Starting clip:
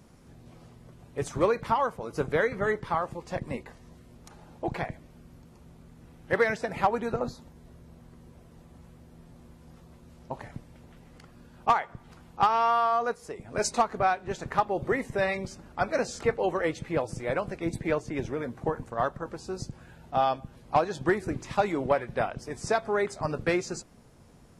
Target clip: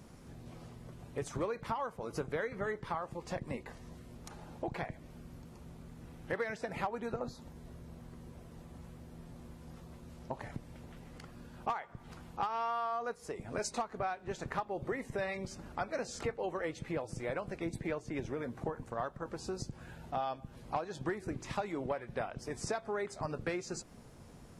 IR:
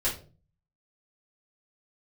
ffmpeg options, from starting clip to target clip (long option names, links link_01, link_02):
-af "acompressor=threshold=-38dB:ratio=3,volume=1dB"